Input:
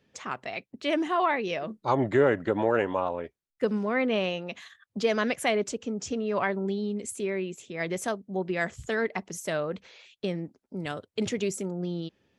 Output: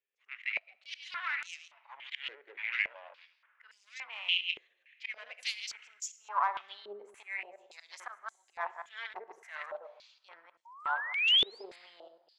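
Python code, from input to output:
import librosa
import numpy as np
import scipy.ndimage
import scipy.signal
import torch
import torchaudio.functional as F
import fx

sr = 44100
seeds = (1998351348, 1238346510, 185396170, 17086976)

y = fx.reverse_delay(x, sr, ms=105, wet_db=-8.0)
y = fx.comb(y, sr, ms=5.3, depth=0.96, at=(0.68, 1.09))
y = fx.auto_swell(y, sr, attack_ms=148.0)
y = fx.cheby_harmonics(y, sr, harmonics=(6,), levels_db=(-17,), full_scale_db=-11.5)
y = fx.filter_sweep_highpass(y, sr, from_hz=2400.0, to_hz=940.0, start_s=5.91, end_s=6.56, q=2.5)
y = fx.spec_paint(y, sr, seeds[0], shape='rise', start_s=10.65, length_s=0.99, low_hz=900.0, high_hz=5200.0, level_db=-24.0)
y = fx.rev_plate(y, sr, seeds[1], rt60_s=2.0, hf_ratio=0.75, predelay_ms=0, drr_db=16.0)
y = fx.filter_held_bandpass(y, sr, hz=3.5, low_hz=410.0, high_hz=7100.0)
y = F.gain(torch.from_numpy(y), 1.5).numpy()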